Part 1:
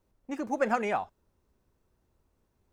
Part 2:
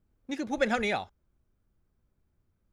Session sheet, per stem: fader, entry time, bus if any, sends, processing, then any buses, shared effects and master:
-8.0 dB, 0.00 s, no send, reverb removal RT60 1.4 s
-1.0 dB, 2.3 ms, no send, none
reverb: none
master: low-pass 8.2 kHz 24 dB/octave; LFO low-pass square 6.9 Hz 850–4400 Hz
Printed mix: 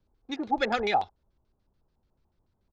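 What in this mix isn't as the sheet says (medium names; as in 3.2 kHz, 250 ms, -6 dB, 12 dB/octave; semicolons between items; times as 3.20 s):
stem 1: missing reverb removal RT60 1.4 s; master: missing low-pass 8.2 kHz 24 dB/octave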